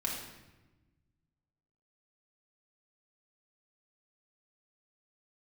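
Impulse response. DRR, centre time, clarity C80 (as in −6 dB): −3.0 dB, 51 ms, 5.0 dB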